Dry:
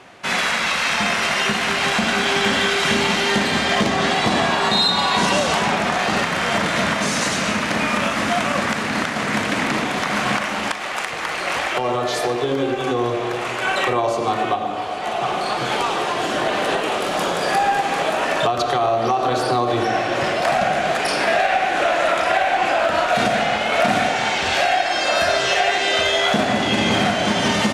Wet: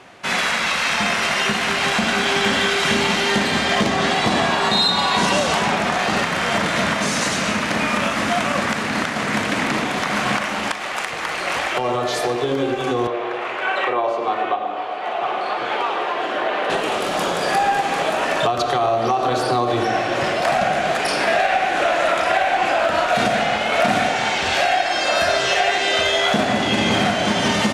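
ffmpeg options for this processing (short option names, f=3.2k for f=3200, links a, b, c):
-filter_complex "[0:a]asettb=1/sr,asplit=3[a][b][c];[a]atrim=end=13.074[d];[b]atrim=start=13.07:end=16.7,asetpts=PTS-STARTPTS,afade=t=in:d=0.004:c=qsin,afade=t=out:st=3.626:d=0.004:c=qsin,acrossover=split=300 3500:gain=0.141 1 0.126[e][f][g];[e][f][g]amix=inputs=3:normalize=0[h];[c]atrim=start=16.696[i];[d][h]acrossfade=d=0.004:c1=hsin:c2=qsin[j];[j][i]acrossfade=d=0.004:c1=qsin:c2=hsin"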